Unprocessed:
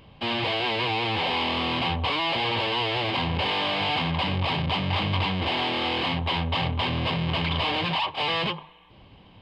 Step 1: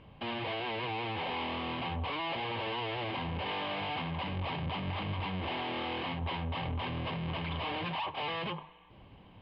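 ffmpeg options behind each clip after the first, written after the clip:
-af "lowpass=2.7k,alimiter=level_in=0.5dB:limit=-24dB:level=0:latency=1:release=18,volume=-0.5dB,volume=-3.5dB"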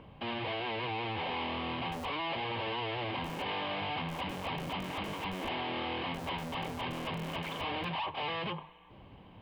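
-filter_complex "[0:a]acrossover=split=140|1600[a][b][c];[a]aeval=exprs='(mod(106*val(0)+1,2)-1)/106':c=same[d];[b]acompressor=mode=upward:threshold=-51dB:ratio=2.5[e];[d][e][c]amix=inputs=3:normalize=0"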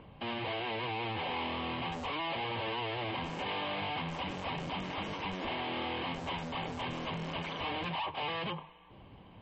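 -ar 32000 -c:a libmp3lame -b:a 32k

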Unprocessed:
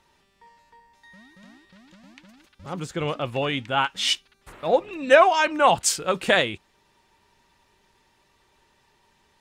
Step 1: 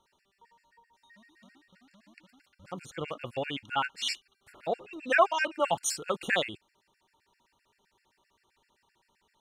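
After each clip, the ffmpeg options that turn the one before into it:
-af "lowshelf=f=150:g=-6.5,afftfilt=real='re*gt(sin(2*PI*7.7*pts/sr)*(1-2*mod(floor(b*sr/1024/1400),2)),0)':imag='im*gt(sin(2*PI*7.7*pts/sr)*(1-2*mod(floor(b*sr/1024/1400),2)),0)':win_size=1024:overlap=0.75,volume=-5dB"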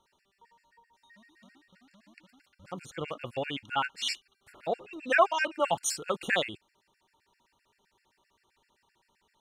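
-af anull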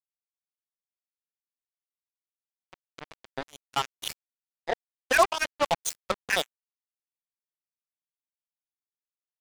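-af "acrusher=bits=3:mix=0:aa=0.5,volume=1.5dB"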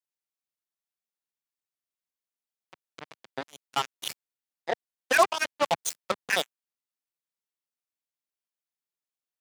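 -af "highpass=130"

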